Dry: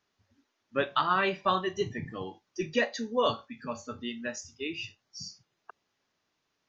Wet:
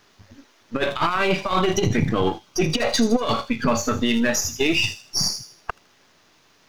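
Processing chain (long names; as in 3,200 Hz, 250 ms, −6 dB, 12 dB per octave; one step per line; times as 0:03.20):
gain on one half-wave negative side −7 dB
0:01.19–0:03.80: notch filter 1,800 Hz, Q 7
compressor whose output falls as the input rises −34 dBFS, ratio −0.5
delay with a high-pass on its return 79 ms, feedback 37%, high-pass 5,600 Hz, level −8 dB
boost into a limiter +28.5 dB
level −8.5 dB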